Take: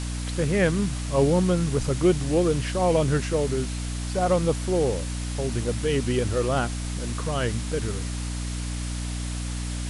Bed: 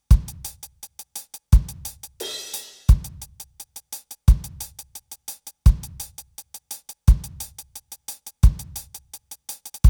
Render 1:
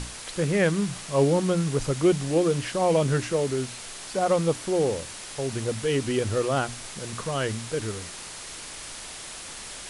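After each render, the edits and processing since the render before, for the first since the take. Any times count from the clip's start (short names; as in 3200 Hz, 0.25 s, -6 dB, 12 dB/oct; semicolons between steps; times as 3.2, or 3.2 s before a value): notches 60/120/180/240/300 Hz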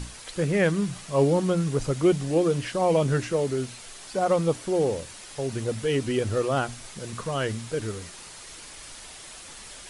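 denoiser 6 dB, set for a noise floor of -40 dBFS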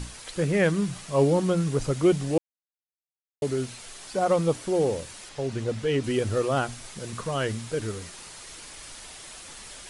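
2.38–3.42 mute; 5.29–6.04 air absorption 62 m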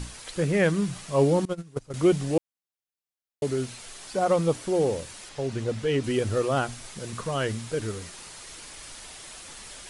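1.45–1.94 gate -22 dBFS, range -22 dB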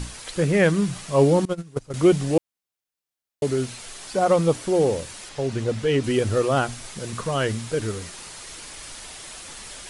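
gain +4 dB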